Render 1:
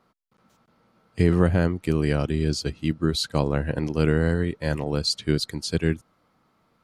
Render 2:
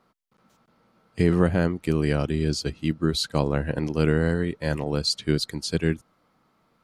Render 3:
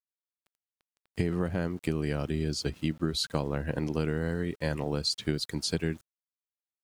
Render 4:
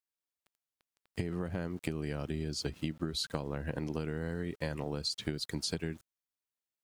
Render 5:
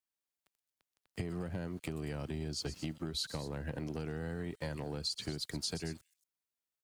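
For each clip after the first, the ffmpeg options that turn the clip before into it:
-af "equalizer=f=93:t=o:w=0.41:g=-6"
-af "acompressor=threshold=0.0562:ratio=6,aeval=exprs='val(0)*gte(abs(val(0)),0.00251)':c=same"
-af "acompressor=threshold=0.0282:ratio=6"
-filter_complex "[0:a]acrossover=split=100|4100[s0][s1][s2];[s1]asoftclip=type=tanh:threshold=0.0335[s3];[s2]aecho=1:1:125.4|227.4:0.355|0.282[s4];[s0][s3][s4]amix=inputs=3:normalize=0,volume=0.841"

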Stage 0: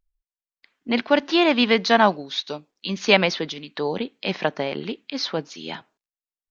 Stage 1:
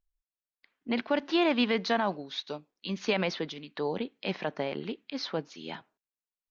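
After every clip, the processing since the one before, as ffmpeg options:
-af "highshelf=f=4200:g=-7.5,alimiter=limit=0.282:level=0:latency=1:release=41,volume=0.501"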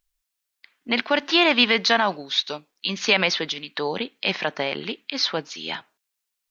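-af "tiltshelf=f=970:g=-6.5,volume=2.66"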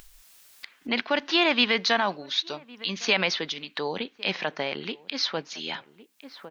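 -filter_complex "[0:a]asplit=2[s0][s1];[s1]adelay=1108,volume=0.0562,highshelf=f=4000:g=-24.9[s2];[s0][s2]amix=inputs=2:normalize=0,acompressor=mode=upward:threshold=0.0562:ratio=2.5,volume=0.631"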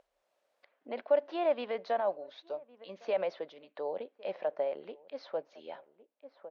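-af "bandpass=f=580:t=q:w=5:csg=0,volume=1.41"

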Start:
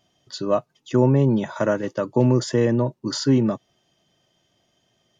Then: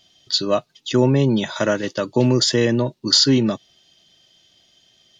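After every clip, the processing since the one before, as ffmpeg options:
-af "equalizer=f=125:t=o:w=1:g=-6,equalizer=f=250:t=o:w=1:g=-3,equalizer=f=500:t=o:w=1:g=-4,equalizer=f=1000:t=o:w=1:g=-6,equalizer=f=4000:t=o:w=1:g=11,volume=2.11"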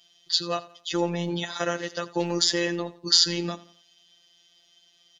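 -af "lowshelf=f=450:g=-9.5,aecho=1:1:86|172|258:0.119|0.0452|0.0172,afftfilt=real='hypot(re,im)*cos(PI*b)':imag='0':win_size=1024:overlap=0.75"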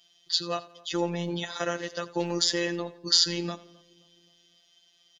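-filter_complex "[0:a]asplit=2[s0][s1];[s1]adelay=263,lowpass=f=1100:p=1,volume=0.0708,asplit=2[s2][s3];[s3]adelay=263,lowpass=f=1100:p=1,volume=0.54,asplit=2[s4][s5];[s5]adelay=263,lowpass=f=1100:p=1,volume=0.54,asplit=2[s6][s7];[s7]adelay=263,lowpass=f=1100:p=1,volume=0.54[s8];[s0][s2][s4][s6][s8]amix=inputs=5:normalize=0,volume=0.75"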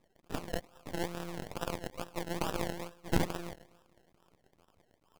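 -filter_complex "[0:a]asplit=2[s0][s1];[s1]highpass=f=720:p=1,volume=2.24,asoftclip=type=tanh:threshold=0.668[s2];[s0][s2]amix=inputs=2:normalize=0,lowpass=f=5000:p=1,volume=0.501,acrusher=samples=29:mix=1:aa=0.000001:lfo=1:lforange=17.4:lforate=2.3,aeval=exprs='max(val(0),0)':c=same,volume=0.531"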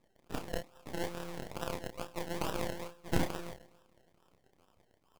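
-filter_complex "[0:a]asplit=2[s0][s1];[s1]adelay=31,volume=0.473[s2];[s0][s2]amix=inputs=2:normalize=0,volume=0.794"

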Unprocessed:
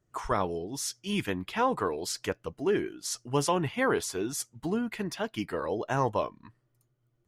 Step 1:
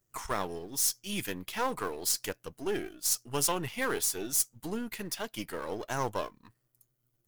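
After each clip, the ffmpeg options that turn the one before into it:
-af "aeval=exprs='if(lt(val(0),0),0.447*val(0),val(0))':c=same,aemphasis=mode=production:type=75fm,volume=0.75"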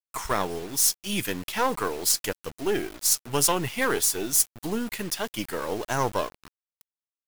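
-af "acrusher=bits=7:mix=0:aa=0.000001,volume=2.11"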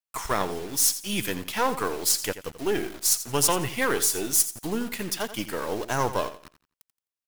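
-af "aecho=1:1:86|172|258:0.224|0.0582|0.0151"

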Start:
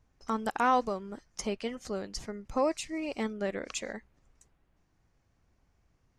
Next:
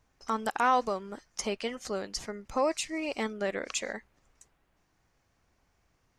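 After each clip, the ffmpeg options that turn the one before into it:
-filter_complex "[0:a]lowshelf=f=350:g=-9,asplit=2[s0][s1];[s1]alimiter=level_in=1.41:limit=0.0631:level=0:latency=1,volume=0.708,volume=0.794[s2];[s0][s2]amix=inputs=2:normalize=0"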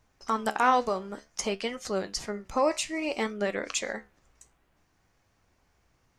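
-af "flanger=delay=9.5:depth=7:regen=69:speed=0.57:shape=sinusoidal,volume=2.24"

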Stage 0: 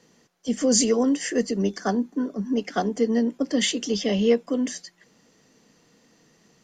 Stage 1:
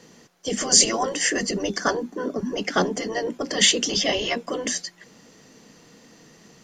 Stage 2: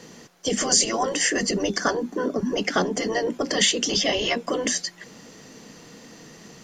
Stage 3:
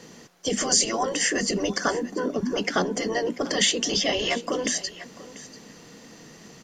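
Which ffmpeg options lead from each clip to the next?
-af "afftfilt=real='re*lt(hypot(re,im),0.355)':imag='im*lt(hypot(re,im),0.355)':win_size=1024:overlap=0.75,volume=2.66"
-af "acompressor=threshold=0.0355:ratio=2,volume=1.88"
-af "aecho=1:1:691:0.133,volume=0.841"

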